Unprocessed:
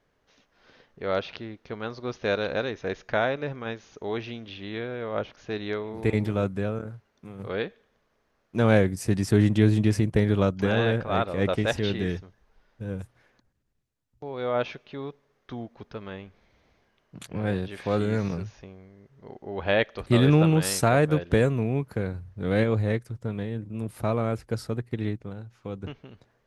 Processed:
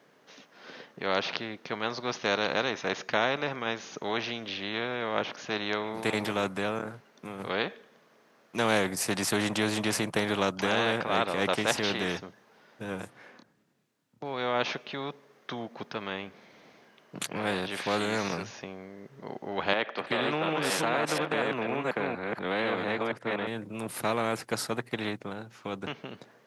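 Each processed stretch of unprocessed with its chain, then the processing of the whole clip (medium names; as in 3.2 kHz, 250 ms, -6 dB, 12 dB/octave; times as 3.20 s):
13.00–14.25 s: treble shelf 5.3 kHz -7 dB + doubling 28 ms -3 dB
19.73–23.47 s: chunks repeated in reverse 242 ms, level -2.5 dB + three-band isolator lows -14 dB, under 220 Hz, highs -18 dB, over 3.6 kHz + compression 4:1, threshold -23 dBFS
whole clip: high-pass 160 Hz 24 dB/octave; dynamic bell 780 Hz, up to +7 dB, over -38 dBFS, Q 0.71; spectrum-flattening compressor 2:1; trim -4 dB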